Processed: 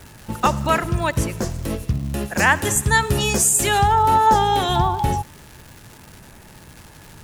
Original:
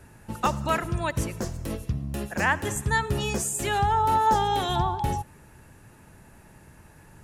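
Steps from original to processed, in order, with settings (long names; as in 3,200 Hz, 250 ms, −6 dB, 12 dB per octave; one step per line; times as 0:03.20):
0:02.35–0:03.88: high-shelf EQ 3,800 Hz +7.5 dB
surface crackle 450 per second −39 dBFS
level +6.5 dB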